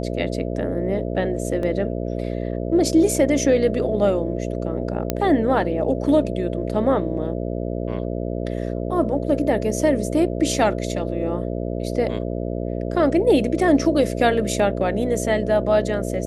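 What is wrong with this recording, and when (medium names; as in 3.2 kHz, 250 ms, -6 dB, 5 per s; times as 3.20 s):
buzz 60 Hz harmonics 11 -26 dBFS
1.63 s: dropout 2.3 ms
5.10 s: pop -6 dBFS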